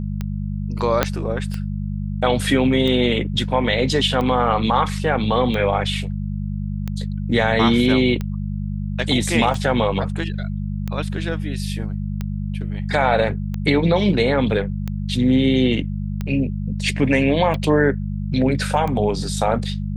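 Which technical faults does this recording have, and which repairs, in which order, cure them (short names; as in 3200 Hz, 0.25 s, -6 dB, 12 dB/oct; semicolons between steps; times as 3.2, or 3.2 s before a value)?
hum 50 Hz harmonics 4 -25 dBFS
tick 45 rpm -14 dBFS
1.03 pop -1 dBFS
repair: de-click; de-hum 50 Hz, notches 4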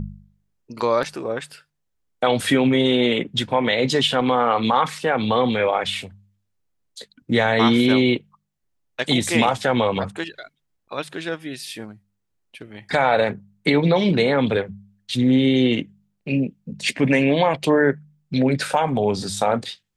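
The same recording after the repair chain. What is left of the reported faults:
1.03 pop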